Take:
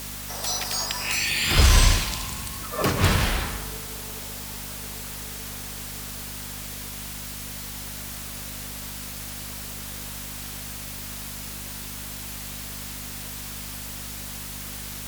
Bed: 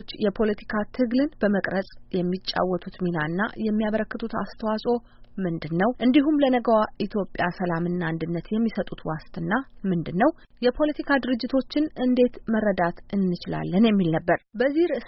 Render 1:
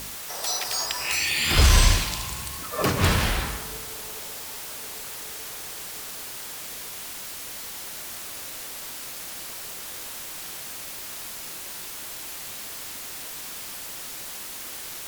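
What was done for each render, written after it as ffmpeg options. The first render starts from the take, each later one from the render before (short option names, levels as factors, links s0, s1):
-af "bandreject=f=50:t=h:w=4,bandreject=f=100:t=h:w=4,bandreject=f=150:t=h:w=4,bandreject=f=200:t=h:w=4,bandreject=f=250:t=h:w=4"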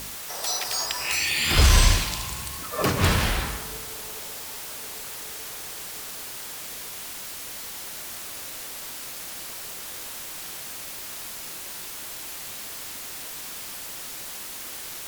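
-af anull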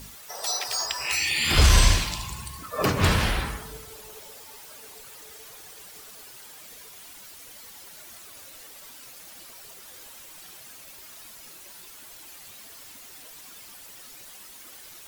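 -af "afftdn=nr=11:nf=-37"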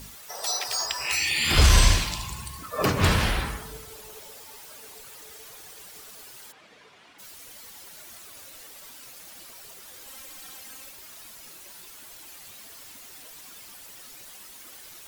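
-filter_complex "[0:a]asplit=3[s0][s1][s2];[s0]afade=t=out:st=6.51:d=0.02[s3];[s1]highpass=120,lowpass=2800,afade=t=in:st=6.51:d=0.02,afade=t=out:st=7.18:d=0.02[s4];[s2]afade=t=in:st=7.18:d=0.02[s5];[s3][s4][s5]amix=inputs=3:normalize=0,asettb=1/sr,asplit=3[s6][s7][s8];[s6]atrim=end=10.074[s9];[s7]atrim=start=10.07:end=10.89,asetpts=PTS-STARTPTS,afade=t=in:d=0.004:c=qsin,afade=t=out:st=0.816:d=0.004:c=qsin,aecho=1:1:3.8:0.79,atrim=end_sample=36162[s10];[s8]atrim=start=10.886[s11];[s9][s10]acrossfade=d=0.004:c1=hsin:c2=qsin[s12];[s12][s11]acrossfade=d=0.004:c1=qsin:c2=hsin"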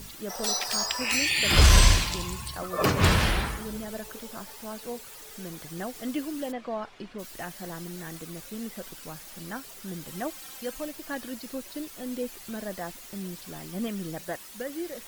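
-filter_complex "[1:a]volume=0.211[s0];[0:a][s0]amix=inputs=2:normalize=0"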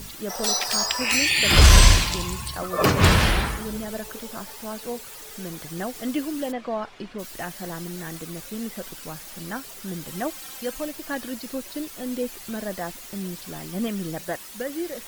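-af "volume=1.68,alimiter=limit=0.891:level=0:latency=1"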